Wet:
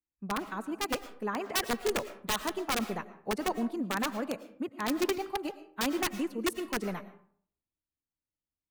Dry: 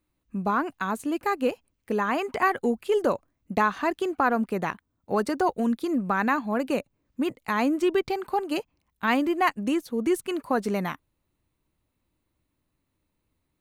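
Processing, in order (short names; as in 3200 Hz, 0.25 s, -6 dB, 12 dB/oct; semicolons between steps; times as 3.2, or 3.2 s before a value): time stretch by phase-locked vocoder 0.64×; wrapped overs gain 16.5 dB; reverb RT60 0.65 s, pre-delay 70 ms, DRR 12 dB; three-band expander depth 40%; gain -6.5 dB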